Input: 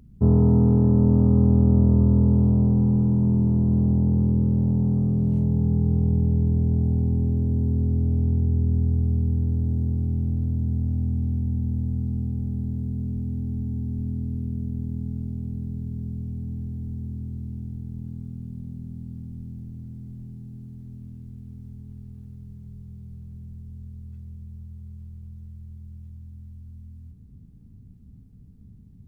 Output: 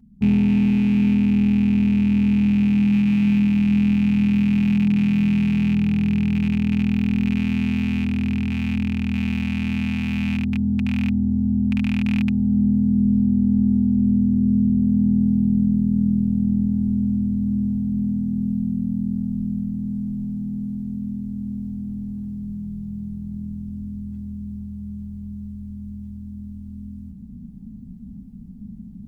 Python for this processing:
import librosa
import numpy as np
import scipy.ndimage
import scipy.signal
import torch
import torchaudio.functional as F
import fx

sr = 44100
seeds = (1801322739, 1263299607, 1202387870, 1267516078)

y = fx.rattle_buzz(x, sr, strikes_db=-20.0, level_db=-15.0)
y = fx.peak_eq(y, sr, hz=500.0, db=-8.0, octaves=2.3)
y = y + 0.53 * np.pad(y, (int(4.5 * sr / 1000.0), 0))[:len(y)]
y = fx.rider(y, sr, range_db=10, speed_s=0.5)
y = fx.small_body(y, sr, hz=(220.0, 780.0), ring_ms=35, db=16)
y = y * librosa.db_to_amplitude(-6.5)